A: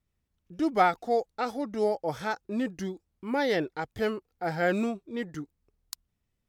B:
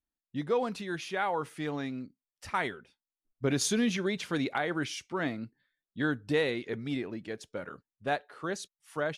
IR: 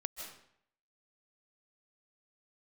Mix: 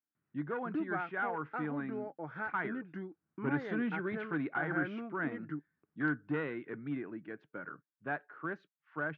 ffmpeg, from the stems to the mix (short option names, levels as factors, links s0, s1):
-filter_complex "[0:a]acompressor=threshold=0.01:ratio=3,adelay=150,volume=0.708[s0];[1:a]aeval=exprs='clip(val(0),-1,0.0501)':c=same,volume=0.398[s1];[s0][s1]amix=inputs=2:normalize=0,highpass=f=120:w=0.5412,highpass=f=120:w=1.3066,equalizer=f=150:t=q:w=4:g=6,equalizer=f=310:t=q:w=4:g=7,equalizer=f=520:t=q:w=4:g=-4,equalizer=f=1100:t=q:w=4:g=4,equalizer=f=1500:t=q:w=4:g=10,lowpass=f=2300:w=0.5412,lowpass=f=2300:w=1.3066"